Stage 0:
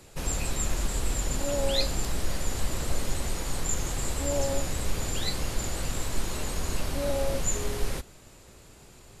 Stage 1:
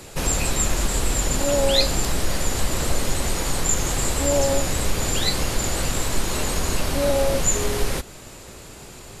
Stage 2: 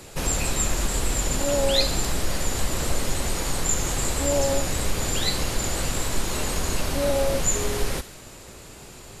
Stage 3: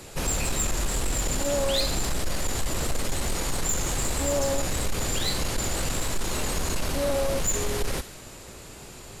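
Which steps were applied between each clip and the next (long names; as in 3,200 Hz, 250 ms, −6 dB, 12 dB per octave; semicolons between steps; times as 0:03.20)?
in parallel at −2 dB: downward compressor, threshold −34 dBFS, peak gain reduction 14 dB; on the sum: low-shelf EQ 140 Hz −4 dB; level +7 dB
delay with a high-pass on its return 68 ms, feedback 61%, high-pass 1,500 Hz, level −13 dB; level −2.5 dB
soft clipping −19 dBFS, distortion −15 dB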